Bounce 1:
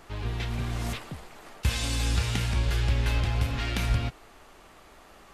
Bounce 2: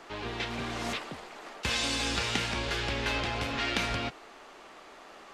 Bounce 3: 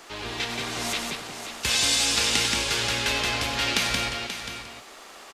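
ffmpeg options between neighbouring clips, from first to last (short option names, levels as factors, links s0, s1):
-filter_complex "[0:a]acrossover=split=220 7500:gain=0.126 1 0.178[s0][s1][s2];[s0][s1][s2]amix=inputs=3:normalize=0,volume=1.5"
-filter_complex "[0:a]asplit=2[s0][s1];[s1]aecho=0:1:533:0.335[s2];[s0][s2]amix=inputs=2:normalize=0,crystalizer=i=3.5:c=0,asplit=2[s3][s4];[s4]aecho=0:1:96.21|177.8:0.316|0.562[s5];[s3][s5]amix=inputs=2:normalize=0"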